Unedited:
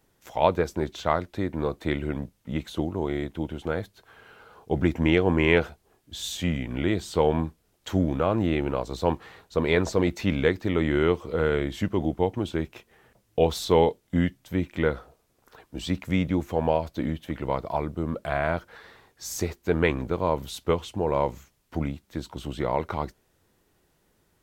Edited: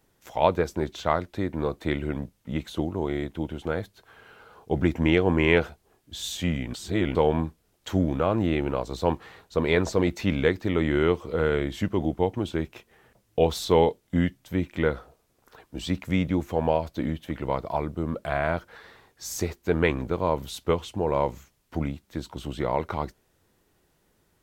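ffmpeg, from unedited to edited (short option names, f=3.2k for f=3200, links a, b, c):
-filter_complex "[0:a]asplit=3[a][b][c];[a]atrim=end=6.742[d];[b]atrim=start=6.738:end=7.152,asetpts=PTS-STARTPTS,areverse[e];[c]atrim=start=7.148[f];[d][e]acrossfade=d=0.004:c1=hsin:c2=hsin[g];[g][f]acrossfade=d=0.004:c1=hsin:c2=hsin"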